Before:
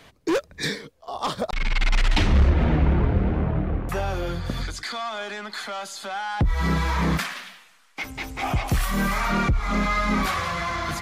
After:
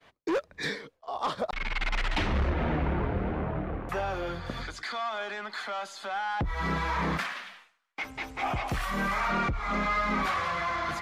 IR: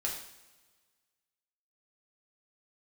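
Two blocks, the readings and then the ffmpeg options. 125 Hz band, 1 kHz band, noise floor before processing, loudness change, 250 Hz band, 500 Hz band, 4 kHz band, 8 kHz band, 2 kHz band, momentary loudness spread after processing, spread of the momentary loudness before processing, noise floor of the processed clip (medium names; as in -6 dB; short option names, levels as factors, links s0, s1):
-10.0 dB, -2.5 dB, -55 dBFS, -6.0 dB, -7.5 dB, -4.0 dB, -6.5 dB, -11.0 dB, -3.0 dB, 8 LU, 11 LU, -67 dBFS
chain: -filter_complex "[0:a]agate=range=0.0224:threshold=0.00501:ratio=3:detection=peak,asplit=2[s0][s1];[s1]highpass=f=720:p=1,volume=3.55,asoftclip=type=tanh:threshold=0.282[s2];[s0][s2]amix=inputs=2:normalize=0,lowpass=f=1800:p=1,volume=0.501,volume=0.531"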